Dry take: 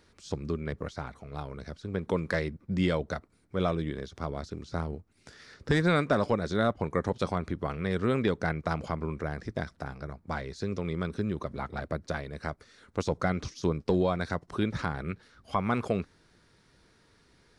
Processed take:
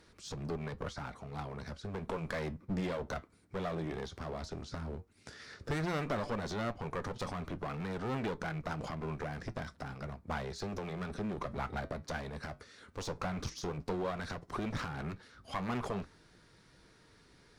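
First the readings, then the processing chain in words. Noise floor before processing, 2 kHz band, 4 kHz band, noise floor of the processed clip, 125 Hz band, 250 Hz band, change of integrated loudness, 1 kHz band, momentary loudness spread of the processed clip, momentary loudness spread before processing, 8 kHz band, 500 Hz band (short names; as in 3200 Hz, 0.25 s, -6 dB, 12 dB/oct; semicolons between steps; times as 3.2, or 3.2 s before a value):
-64 dBFS, -7.0 dB, -5.0 dB, -63 dBFS, -7.5 dB, -8.5 dB, -8.0 dB, -6.0 dB, 8 LU, 12 LU, -0.5 dB, -8.5 dB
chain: limiter -23 dBFS, peak gain reduction 7.5 dB; one-sided clip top -41 dBFS; dynamic EQ 970 Hz, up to +3 dB, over -55 dBFS, Q 1.1; flange 0.12 Hz, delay 6.1 ms, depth 4.5 ms, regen -73%; gain +5 dB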